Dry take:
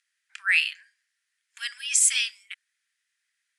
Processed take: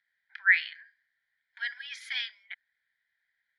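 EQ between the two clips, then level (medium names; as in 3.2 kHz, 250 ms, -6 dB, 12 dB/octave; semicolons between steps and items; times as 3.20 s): low-pass 11 kHz; distance through air 470 m; static phaser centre 1.8 kHz, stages 8; +7.5 dB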